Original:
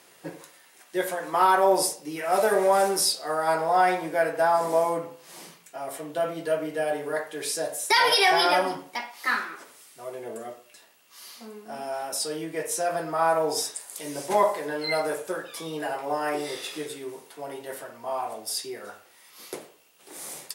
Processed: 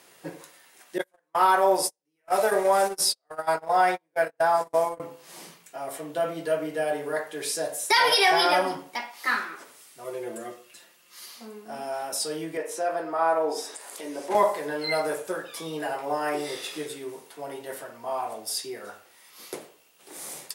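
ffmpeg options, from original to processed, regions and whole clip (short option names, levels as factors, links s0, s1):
-filter_complex "[0:a]asettb=1/sr,asplit=3[s0][s1][s2];[s0]atrim=end=0.984[s3];[s1]atrim=start=0.98:end=5,asetpts=PTS-STARTPTS,afade=t=in:d=0.004:c=qsin,afade=t=out:st=4.016:d=0.004:c=qsin,equalizer=f=240:t=o:w=1.1:g=-4.5,agate=range=0.00891:threshold=0.0501:ratio=16:release=100:detection=peak[s4];[s2]atrim=start=4.996[s5];[s3][s4]acrossfade=d=0.004:c1=hsin:c2=qsin[s6];[s6][s5]acrossfade=d=0.004:c1=qsin:c2=hsin,asettb=1/sr,asplit=3[s7][s8][s9];[s7]atrim=end=10.044[s10];[s8]atrim=start=10.04:end=11.26,asetpts=PTS-STARTPTS,afade=t=in:d=0.004:c=qsin,afade=t=out:st=1.216:d=0.004:c=qsin,equalizer=f=770:t=o:w=0.26:g=-9,aecho=1:1:5.7:0.9,atrim=end_sample=53802[s11];[s9]atrim=start=11.256[s12];[s10][s11]acrossfade=d=0.004:c1=hsin:c2=qsin[s13];[s13][s12]acrossfade=d=0.004:c1=qsin:c2=hsin,asettb=1/sr,asplit=3[s14][s15][s16];[s14]atrim=end=12.574[s17];[s15]atrim=start=12.57:end=14.35,asetpts=PTS-STARTPTS,afade=t=in:d=0.004:c=qsin,afade=t=out:st=1.776:d=0.004:c=qsin,highshelf=f=3600:g=-11,acompressor=mode=upward:threshold=0.0282:ratio=2.5:attack=3.2:release=140:knee=2.83:detection=peak,highpass=f=230:w=0.5412,highpass=f=230:w=1.3066[s18];[s16]atrim=start=14.346[s19];[s17][s18]acrossfade=d=0.004:c1=hsin:c2=qsin[s20];[s20][s19]acrossfade=d=0.004:c1=qsin:c2=hsin"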